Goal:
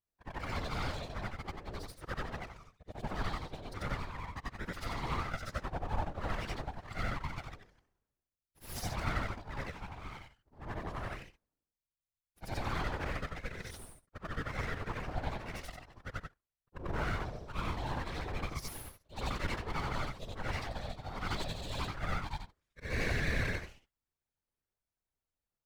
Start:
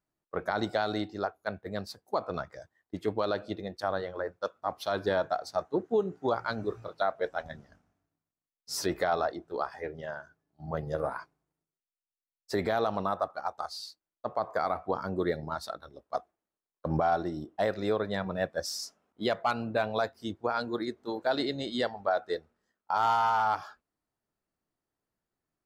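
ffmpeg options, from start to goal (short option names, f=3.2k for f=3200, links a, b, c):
-af "afftfilt=real='re':imag='-im':win_size=8192:overlap=0.75,aeval=exprs='abs(val(0))':c=same,afftfilt=real='hypot(re,im)*cos(2*PI*random(0))':imag='hypot(re,im)*sin(2*PI*random(1))':win_size=512:overlap=0.75,volume=5.5dB"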